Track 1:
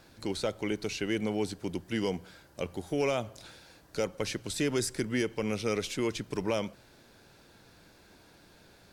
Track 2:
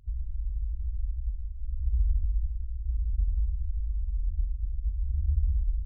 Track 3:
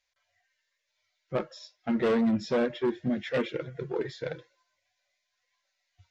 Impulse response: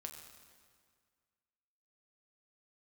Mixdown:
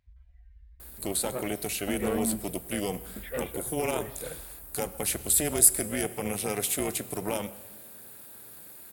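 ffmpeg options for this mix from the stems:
-filter_complex "[0:a]alimiter=limit=-22dB:level=0:latency=1,tremolo=f=300:d=0.889,aexciter=amount=11:drive=7.3:freq=8400,adelay=800,volume=2.5dB,asplit=2[link_01][link_02];[link_02]volume=-3.5dB[link_03];[1:a]volume=-14dB[link_04];[2:a]lowpass=2900,volume=-5.5dB,asplit=3[link_05][link_06][link_07];[link_05]atrim=end=2.5,asetpts=PTS-STARTPTS,afade=type=out:start_time=2.496:duration=0.004:curve=hsin[link_08];[link_06]atrim=start=2.5:end=3.16,asetpts=PTS-STARTPTS,volume=0[link_09];[link_07]atrim=start=3.16,asetpts=PTS-STARTPTS,afade=type=in:duration=0.004:curve=hsin[link_10];[link_08][link_09][link_10]concat=n=3:v=0:a=1[link_11];[3:a]atrim=start_sample=2205[link_12];[link_03][link_12]afir=irnorm=-1:irlink=0[link_13];[link_01][link_04][link_11][link_13]amix=inputs=4:normalize=0,highpass=frequency=110:poles=1"

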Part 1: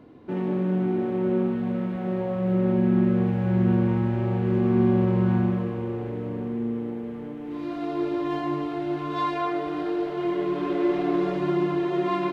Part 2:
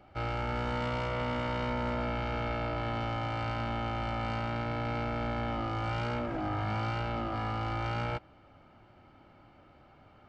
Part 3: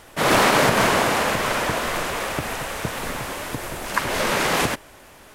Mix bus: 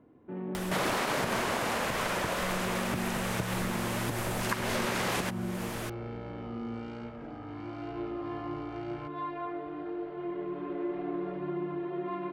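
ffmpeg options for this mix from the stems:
ffmpeg -i stem1.wav -i stem2.wav -i stem3.wav -filter_complex "[0:a]lowpass=2200,volume=-10dB[link_01];[1:a]acompressor=threshold=-36dB:ratio=6,adelay=900,volume=-6.5dB[link_02];[2:a]acompressor=mode=upward:threshold=-25dB:ratio=2.5,adelay=550,volume=-2.5dB[link_03];[link_01][link_02][link_03]amix=inputs=3:normalize=0,acompressor=threshold=-28dB:ratio=5" out.wav

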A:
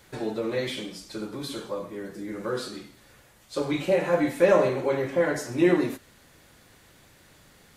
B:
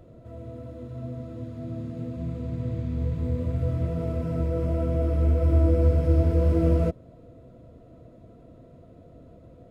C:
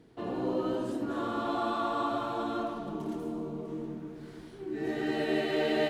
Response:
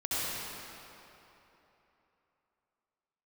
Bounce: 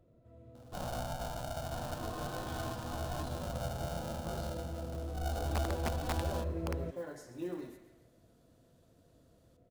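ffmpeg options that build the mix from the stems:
-filter_complex "[0:a]acrusher=bits=7:mode=log:mix=0:aa=0.000001,adelay=1800,volume=-18.5dB,asplit=2[link_01][link_02];[link_02]volume=-15dB[link_03];[1:a]aeval=exprs='(mod(3.76*val(0)+1,2)-1)/3.76':channel_layout=same,volume=-16dB[link_04];[2:a]equalizer=frequency=1700:width=0.3:gain=-12,aeval=exprs='val(0)*sgn(sin(2*PI*370*n/s))':channel_layout=same,adelay=550,volume=1dB[link_05];[link_01][link_05]amix=inputs=2:normalize=0,equalizer=frequency=2100:width=2.9:gain=-13.5,alimiter=level_in=5.5dB:limit=-24dB:level=0:latency=1:release=426,volume=-5.5dB,volume=0dB[link_06];[link_03]aecho=0:1:135|270|405|540|675|810:1|0.45|0.202|0.0911|0.041|0.0185[link_07];[link_04][link_06][link_07]amix=inputs=3:normalize=0"

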